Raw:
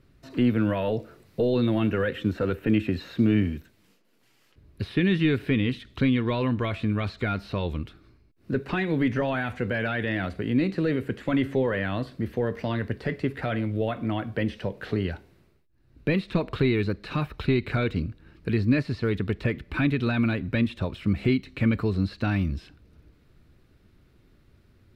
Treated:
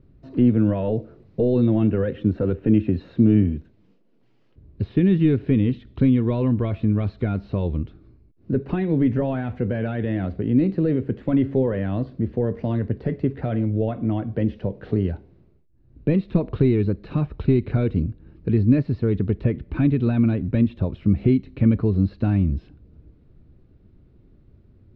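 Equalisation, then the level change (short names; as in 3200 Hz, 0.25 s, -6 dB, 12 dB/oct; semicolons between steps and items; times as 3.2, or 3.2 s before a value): air absorption 210 m; bell 1600 Hz -11 dB 2.3 oct; high shelf 2700 Hz -10 dB; +6.5 dB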